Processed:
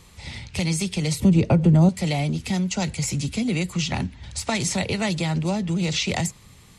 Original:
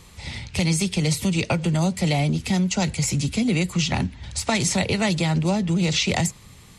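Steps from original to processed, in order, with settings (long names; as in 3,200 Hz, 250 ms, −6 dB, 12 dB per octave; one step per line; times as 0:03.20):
0:01.20–0:01.89: tilt shelving filter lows +9.5 dB, about 1,100 Hz
level −2.5 dB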